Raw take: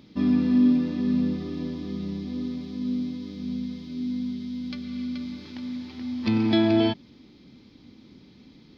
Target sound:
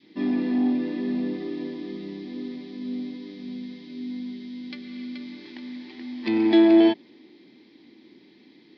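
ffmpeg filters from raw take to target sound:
-af "adynamicequalizer=threshold=0.0224:dfrequency=610:dqfactor=0.75:tfrequency=610:tqfactor=0.75:attack=5:release=100:ratio=0.375:range=2.5:mode=boostabove:tftype=bell,asoftclip=type=tanh:threshold=-12dB,highpass=310,equalizer=f=340:t=q:w=4:g=9,equalizer=f=540:t=q:w=4:g=-4,equalizer=f=1.3k:t=q:w=4:g=-9,equalizer=f=1.9k:t=q:w=4:g=8,lowpass=f=4.9k:w=0.5412,lowpass=f=4.9k:w=1.3066"

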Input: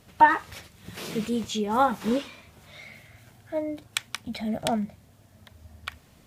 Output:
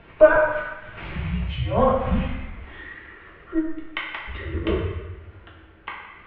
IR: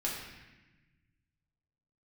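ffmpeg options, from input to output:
-filter_complex "[0:a]acompressor=mode=upward:threshold=-38dB:ratio=2.5[a];[1:a]atrim=start_sample=2205[b];[a][b]afir=irnorm=-1:irlink=0,highpass=f=250:t=q:w=0.5412,highpass=f=250:t=q:w=1.307,lowpass=f=3.1k:t=q:w=0.5176,lowpass=f=3.1k:t=q:w=0.7071,lowpass=f=3.1k:t=q:w=1.932,afreqshift=-300,volume=1dB"

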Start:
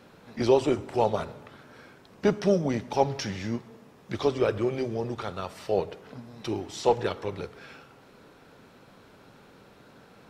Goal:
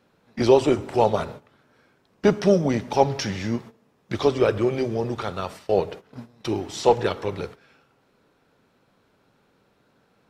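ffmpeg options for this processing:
-af "agate=range=-15dB:threshold=-42dB:ratio=16:detection=peak,volume=5dB"

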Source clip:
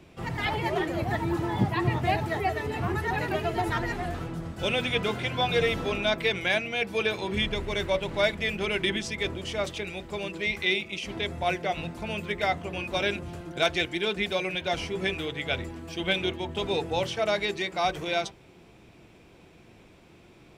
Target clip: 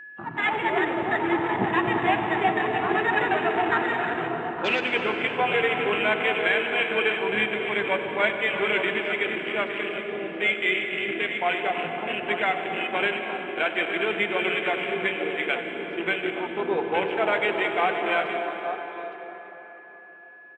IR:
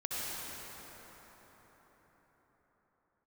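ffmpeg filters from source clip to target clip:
-filter_complex "[0:a]highpass=310,equalizer=f=580:t=q:w=4:g=-7,equalizer=f=1.6k:t=q:w=4:g=4,equalizer=f=2.7k:t=q:w=4:g=4,lowpass=f=2.9k:w=0.5412,lowpass=f=2.9k:w=1.3066,alimiter=limit=-17dB:level=0:latency=1:release=371,aecho=1:1:292|343|525|629|864:0.133|0.251|0.141|0.15|0.376,afwtdn=0.0224,aeval=exprs='val(0)+0.00562*sin(2*PI*1700*n/s)':c=same,asplit=2[a][b];[b]equalizer=f=1.8k:t=o:w=0.77:g=-4.5[c];[1:a]atrim=start_sample=2205,asetrate=57330,aresample=44100,adelay=95[d];[c][d]afir=irnorm=-1:irlink=0,volume=-7dB[e];[a][e]amix=inputs=2:normalize=0,volume=5dB"

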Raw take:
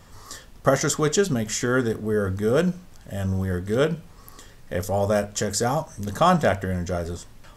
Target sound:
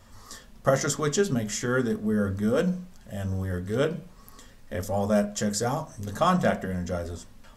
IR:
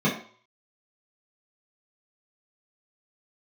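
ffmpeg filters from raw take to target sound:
-filter_complex "[0:a]flanger=delay=3:depth=4.7:regen=-50:speed=0.42:shape=triangular,asplit=2[a][b];[1:a]atrim=start_sample=2205[c];[b][c]afir=irnorm=-1:irlink=0,volume=-26.5dB[d];[a][d]amix=inputs=2:normalize=0"

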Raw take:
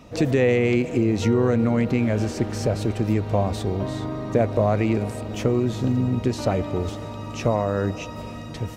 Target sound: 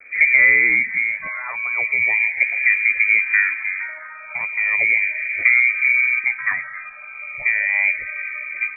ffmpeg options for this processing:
-filter_complex "[0:a]afftdn=nr=13:nf=-38,adynamicequalizer=threshold=0.00501:dfrequency=1100:dqfactor=4:tfrequency=1100:tqfactor=4:attack=5:release=100:ratio=0.375:range=2:mode=cutabove:tftype=bell,asplit=2[a][b];[b]acontrast=81,volume=-1.5dB[c];[a][c]amix=inputs=2:normalize=0,acrusher=bits=6:mix=0:aa=0.000001,lowpass=f=2.1k:t=q:w=0.5098,lowpass=f=2.1k:t=q:w=0.6013,lowpass=f=2.1k:t=q:w=0.9,lowpass=f=2.1k:t=q:w=2.563,afreqshift=-2500,asplit=2[d][e];[e]afreqshift=-0.37[f];[d][f]amix=inputs=2:normalize=1,volume=-2.5dB"

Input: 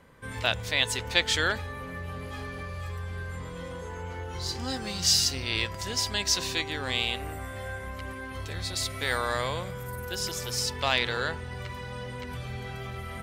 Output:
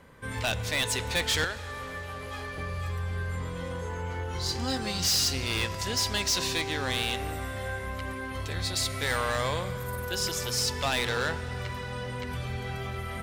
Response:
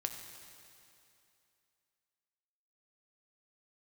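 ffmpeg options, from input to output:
-filter_complex "[0:a]asettb=1/sr,asplit=3[a][b][c];[a]atrim=end=1.444[d];[b]atrim=start=1.44:end=2.58,asetpts=PTS-STARTPTS,afade=t=in:d=0.004:c=qsin,afade=t=out:st=1.136:d=0.004:c=qsin,acrossover=split=95|370[e][f][g];[e]acompressor=threshold=-46dB:ratio=4[h];[f]acompressor=threshold=-54dB:ratio=4[i];[g]acompressor=threshold=-34dB:ratio=4[j];[h][i][j]amix=inputs=3:normalize=0[k];[c]atrim=start=2.576[l];[d][k]acrossfade=d=0.004:c1=hsin:c2=qsin[m];[m][l]acrossfade=d=0.004:c1=qsin:c2=hsin,asoftclip=type=hard:threshold=-25dB,asplit=2[n][o];[1:a]atrim=start_sample=2205,asetrate=29547,aresample=44100[p];[o][p]afir=irnorm=-1:irlink=0,volume=-11dB[q];[n][q]amix=inputs=2:normalize=0"

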